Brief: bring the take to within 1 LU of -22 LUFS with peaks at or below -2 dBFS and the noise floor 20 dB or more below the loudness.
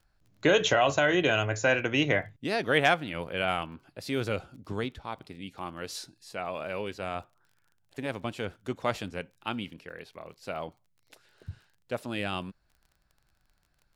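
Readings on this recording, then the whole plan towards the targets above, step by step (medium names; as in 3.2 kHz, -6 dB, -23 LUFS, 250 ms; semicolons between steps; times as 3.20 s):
tick rate 26 per s; loudness -29.5 LUFS; peak level -10.0 dBFS; loudness target -22.0 LUFS
-> de-click; trim +7.5 dB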